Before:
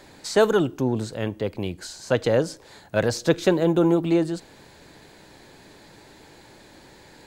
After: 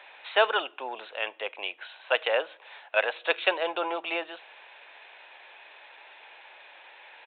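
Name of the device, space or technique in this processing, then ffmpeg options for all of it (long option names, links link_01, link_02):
musical greeting card: -af "aresample=8000,aresample=44100,highpass=frequency=650:width=0.5412,highpass=frequency=650:width=1.3066,equalizer=frequency=2600:width_type=o:width=0.39:gain=9.5,volume=1.5dB"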